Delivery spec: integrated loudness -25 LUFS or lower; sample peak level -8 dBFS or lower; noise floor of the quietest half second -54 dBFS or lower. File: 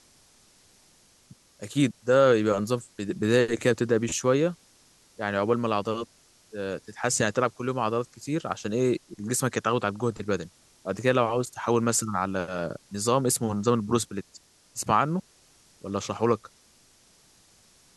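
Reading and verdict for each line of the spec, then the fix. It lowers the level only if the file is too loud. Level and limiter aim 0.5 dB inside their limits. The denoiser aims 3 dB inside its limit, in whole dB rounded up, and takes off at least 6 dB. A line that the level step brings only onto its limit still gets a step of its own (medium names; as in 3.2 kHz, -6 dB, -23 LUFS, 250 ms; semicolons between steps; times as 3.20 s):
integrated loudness -26.5 LUFS: pass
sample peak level -7.5 dBFS: fail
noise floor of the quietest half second -60 dBFS: pass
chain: peak limiter -8.5 dBFS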